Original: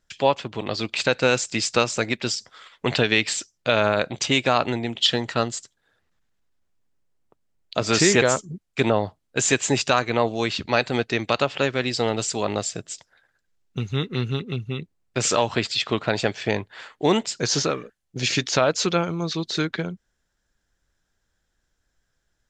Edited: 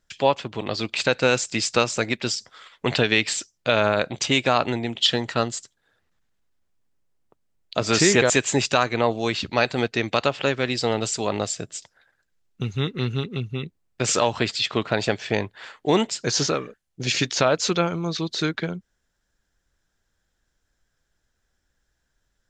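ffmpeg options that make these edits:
ffmpeg -i in.wav -filter_complex "[0:a]asplit=2[link_01][link_02];[link_01]atrim=end=8.302[link_03];[link_02]atrim=start=9.458[link_04];[link_03][link_04]acrossfade=duration=0.004:curve1=hsin:curve2=hsin" out.wav

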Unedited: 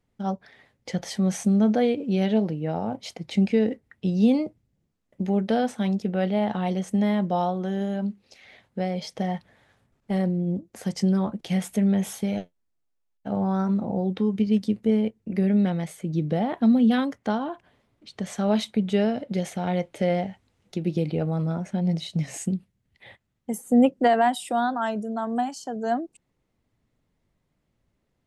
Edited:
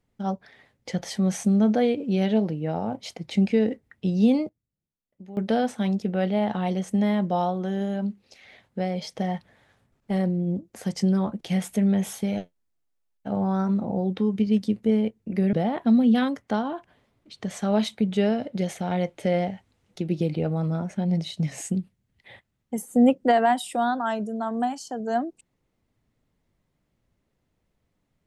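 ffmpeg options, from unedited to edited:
ffmpeg -i in.wav -filter_complex "[0:a]asplit=4[link_01][link_02][link_03][link_04];[link_01]atrim=end=4.49,asetpts=PTS-STARTPTS,afade=type=out:start_time=4.36:duration=0.13:curve=log:silence=0.149624[link_05];[link_02]atrim=start=4.49:end=5.37,asetpts=PTS-STARTPTS,volume=-16.5dB[link_06];[link_03]atrim=start=5.37:end=15.532,asetpts=PTS-STARTPTS,afade=type=in:duration=0.13:curve=log:silence=0.149624[link_07];[link_04]atrim=start=16.288[link_08];[link_05][link_06][link_07]concat=n=3:v=0:a=1[link_09];[link_09][link_08]acrossfade=duration=0.004:curve1=hsin:curve2=hsin" out.wav

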